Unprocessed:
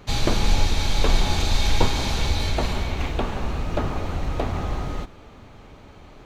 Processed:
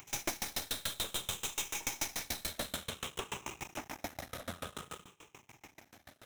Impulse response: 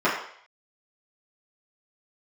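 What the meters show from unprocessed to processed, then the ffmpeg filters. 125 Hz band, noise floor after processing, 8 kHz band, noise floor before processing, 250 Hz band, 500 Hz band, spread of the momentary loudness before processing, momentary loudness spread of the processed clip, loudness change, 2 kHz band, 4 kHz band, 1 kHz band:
-26.0 dB, -70 dBFS, -3.5 dB, -46 dBFS, -19.0 dB, -17.0 dB, 7 LU, 21 LU, -13.5 dB, -11.0 dB, -11.5 dB, -15.5 dB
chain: -filter_complex "[0:a]afftfilt=real='re*pow(10,11/40*sin(2*PI*(0.71*log(max(b,1)*sr/1024/100)/log(2)-(-0.55)*(pts-256)/sr)))':imag='im*pow(10,11/40*sin(2*PI*(0.71*log(max(b,1)*sr/1024/100)/log(2)-(-0.55)*(pts-256)/sr)))':win_size=1024:overlap=0.75,acrossover=split=220[s0][s1];[s0]acompressor=threshold=0.0631:ratio=10[s2];[s1]crystalizer=i=7:c=0[s3];[s2][s3]amix=inputs=2:normalize=0,aeval=exprs='max(val(0),0)':c=same,highpass=95,volume=11.9,asoftclip=hard,volume=0.0841,acompressor=mode=upward:threshold=0.0112:ratio=2.5,equalizer=f=4500:t=o:w=0.21:g=-15,aeval=exprs='val(0)*pow(10,-29*if(lt(mod(6.9*n/s,1),2*abs(6.9)/1000),1-mod(6.9*n/s,1)/(2*abs(6.9)/1000),(mod(6.9*n/s,1)-2*abs(6.9)/1000)/(1-2*abs(6.9)/1000))/20)':c=same,volume=0.596"

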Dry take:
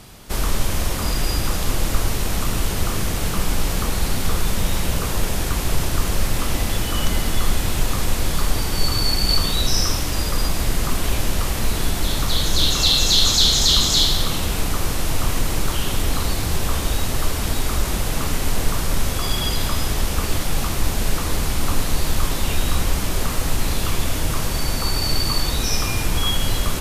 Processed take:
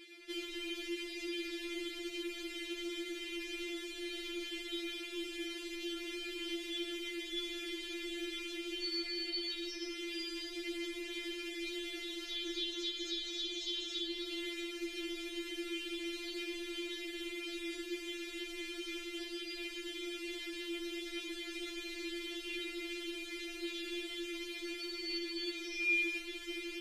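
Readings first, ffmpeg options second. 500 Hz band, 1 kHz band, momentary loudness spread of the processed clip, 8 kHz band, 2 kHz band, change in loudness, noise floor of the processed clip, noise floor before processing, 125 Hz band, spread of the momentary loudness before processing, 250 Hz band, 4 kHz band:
-14.0 dB, -30.0 dB, 5 LU, -26.5 dB, -11.0 dB, -18.0 dB, -46 dBFS, -24 dBFS, under -40 dB, 7 LU, -12.5 dB, -17.0 dB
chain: -filter_complex "[0:a]acrossover=split=170|390|3300[s0][s1][s2][s3];[s0]acompressor=threshold=0.0708:ratio=4[s4];[s1]acompressor=threshold=0.0112:ratio=4[s5];[s2]acompressor=threshold=0.0126:ratio=4[s6];[s3]acompressor=threshold=0.02:ratio=4[s7];[s4][s5][s6][s7]amix=inputs=4:normalize=0,asplit=3[s8][s9][s10];[s8]bandpass=f=270:t=q:w=8,volume=1[s11];[s9]bandpass=f=2290:t=q:w=8,volume=0.501[s12];[s10]bandpass=f=3010:t=q:w=8,volume=0.355[s13];[s11][s12][s13]amix=inputs=3:normalize=0,afftfilt=real='re*4*eq(mod(b,16),0)':imag='im*4*eq(mod(b,16),0)':win_size=2048:overlap=0.75,volume=2.99"

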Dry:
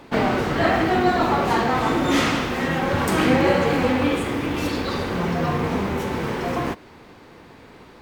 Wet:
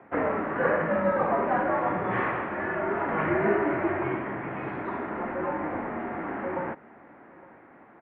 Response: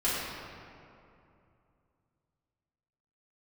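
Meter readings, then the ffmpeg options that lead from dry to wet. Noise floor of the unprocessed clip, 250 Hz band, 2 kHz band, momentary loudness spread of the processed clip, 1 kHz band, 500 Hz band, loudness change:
-47 dBFS, -9.0 dB, -6.0 dB, 9 LU, -5.5 dB, -4.5 dB, -6.5 dB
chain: -af "aecho=1:1:859:0.075,highpass=f=410:t=q:w=0.5412,highpass=f=410:t=q:w=1.307,lowpass=f=2200:t=q:w=0.5176,lowpass=f=2200:t=q:w=0.7071,lowpass=f=2200:t=q:w=1.932,afreqshift=-160,volume=0.668"

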